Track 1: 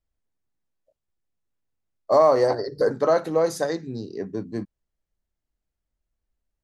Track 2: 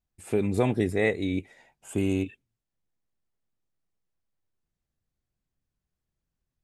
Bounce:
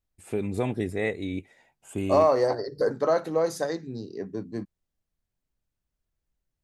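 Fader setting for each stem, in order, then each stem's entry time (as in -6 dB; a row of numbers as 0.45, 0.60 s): -3.5, -3.5 dB; 0.00, 0.00 s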